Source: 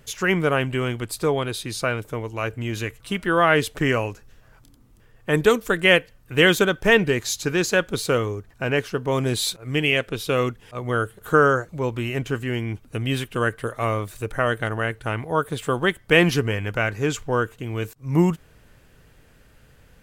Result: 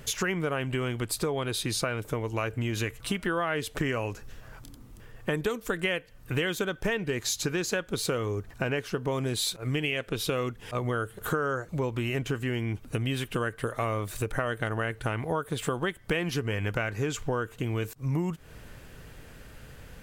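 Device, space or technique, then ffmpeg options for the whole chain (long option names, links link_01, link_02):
serial compression, peaks first: -af "acompressor=threshold=-28dB:ratio=5,acompressor=threshold=-39dB:ratio=1.5,volume=6dB"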